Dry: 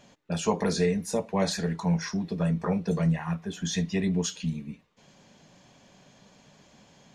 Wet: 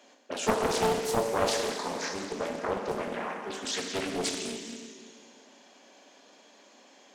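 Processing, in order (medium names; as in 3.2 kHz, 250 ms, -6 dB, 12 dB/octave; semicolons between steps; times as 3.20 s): steep high-pass 250 Hz 48 dB/octave; Schroeder reverb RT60 2.3 s, combs from 30 ms, DRR 1.5 dB; loudspeaker Doppler distortion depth 0.72 ms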